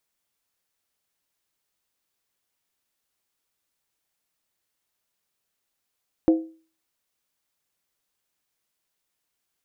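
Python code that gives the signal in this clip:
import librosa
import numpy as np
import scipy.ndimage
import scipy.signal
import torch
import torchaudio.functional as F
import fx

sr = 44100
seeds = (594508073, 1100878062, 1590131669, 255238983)

y = fx.strike_skin(sr, length_s=0.63, level_db=-11, hz=323.0, decay_s=0.39, tilt_db=9.5, modes=5)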